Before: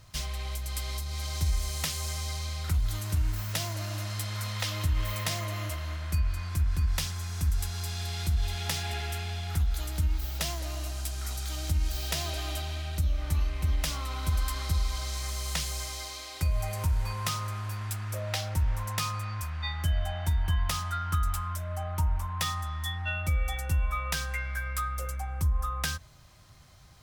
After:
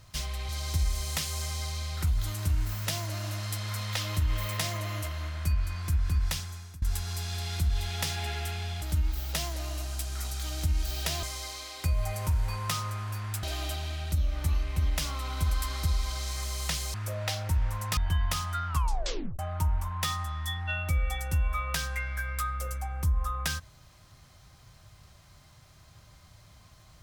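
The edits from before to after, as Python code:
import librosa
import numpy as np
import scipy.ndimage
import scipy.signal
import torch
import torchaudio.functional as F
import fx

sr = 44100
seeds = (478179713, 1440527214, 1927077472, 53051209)

y = fx.edit(x, sr, fx.cut(start_s=0.49, length_s=0.67),
    fx.fade_out_to(start_s=6.93, length_s=0.56, floor_db=-23.5),
    fx.cut(start_s=9.49, length_s=0.39),
    fx.move(start_s=15.8, length_s=2.2, to_s=12.29),
    fx.cut(start_s=19.03, length_s=1.32),
    fx.tape_stop(start_s=21.06, length_s=0.71), tone=tone)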